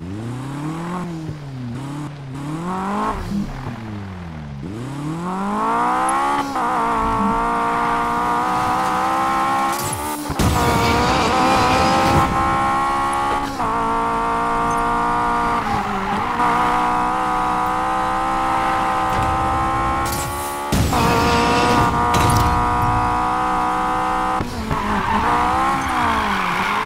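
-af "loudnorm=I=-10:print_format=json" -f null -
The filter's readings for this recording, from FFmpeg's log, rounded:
"input_i" : "-18.8",
"input_tp" : "-2.5",
"input_lra" : "6.9",
"input_thresh" : "-29.0",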